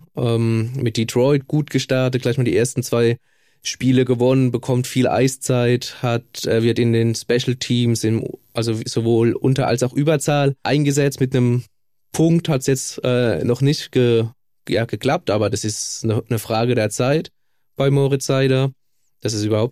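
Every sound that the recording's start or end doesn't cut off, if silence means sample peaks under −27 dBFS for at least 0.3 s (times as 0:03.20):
0:03.66–0:11.60
0:12.14–0:14.28
0:14.67–0:17.26
0:17.79–0:18.69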